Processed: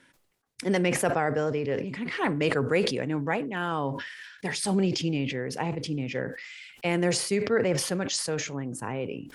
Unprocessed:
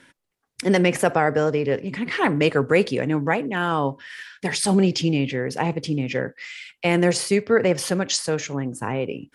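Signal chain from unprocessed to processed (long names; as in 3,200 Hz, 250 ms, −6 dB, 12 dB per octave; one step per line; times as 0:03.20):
level that may fall only so fast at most 58 dB per second
level −7 dB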